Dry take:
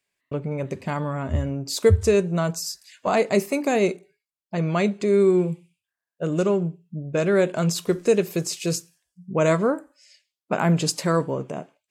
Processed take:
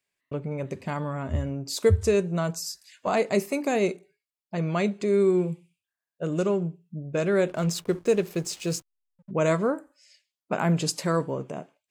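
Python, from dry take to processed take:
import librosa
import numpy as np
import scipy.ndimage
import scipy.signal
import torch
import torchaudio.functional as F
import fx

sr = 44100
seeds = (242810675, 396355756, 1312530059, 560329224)

y = fx.backlash(x, sr, play_db=-36.5, at=(7.48, 9.31))
y = F.gain(torch.from_numpy(y), -3.5).numpy()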